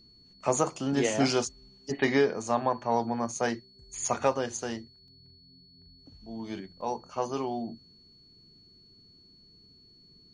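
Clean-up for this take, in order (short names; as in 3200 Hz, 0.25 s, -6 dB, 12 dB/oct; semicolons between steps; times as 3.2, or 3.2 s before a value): notch 4400 Hz, Q 30; interpolate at 5.08/6.81, 1.8 ms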